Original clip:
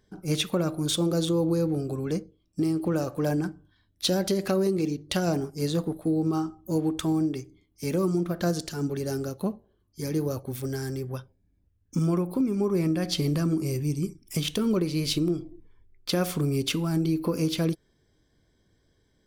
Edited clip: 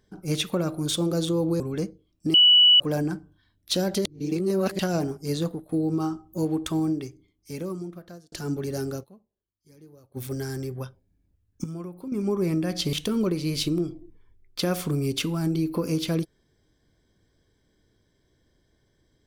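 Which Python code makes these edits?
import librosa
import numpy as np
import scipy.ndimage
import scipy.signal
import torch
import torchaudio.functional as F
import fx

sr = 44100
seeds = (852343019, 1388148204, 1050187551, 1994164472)

y = fx.edit(x, sr, fx.cut(start_s=1.6, length_s=0.33),
    fx.bleep(start_s=2.67, length_s=0.46, hz=2950.0, db=-12.0),
    fx.reverse_span(start_s=4.38, length_s=0.74),
    fx.fade_out_to(start_s=5.75, length_s=0.27, floor_db=-12.5),
    fx.fade_out_span(start_s=7.19, length_s=1.46),
    fx.fade_down_up(start_s=9.36, length_s=1.14, db=-23.0, fade_s=0.15, curve='exp'),
    fx.clip_gain(start_s=11.97, length_s=0.48, db=-11.0),
    fx.cut(start_s=13.26, length_s=1.17), tone=tone)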